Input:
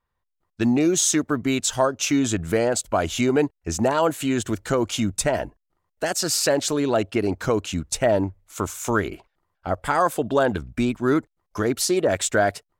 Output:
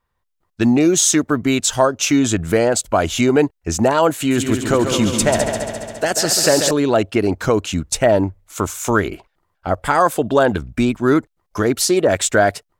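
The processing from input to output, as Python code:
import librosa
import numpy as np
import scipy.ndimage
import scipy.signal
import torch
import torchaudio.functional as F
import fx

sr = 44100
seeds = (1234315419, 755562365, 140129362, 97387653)

y = fx.echo_heads(x, sr, ms=69, heads='second and third', feedback_pct=61, wet_db=-8, at=(4.17, 6.71))
y = F.gain(torch.from_numpy(y), 5.5).numpy()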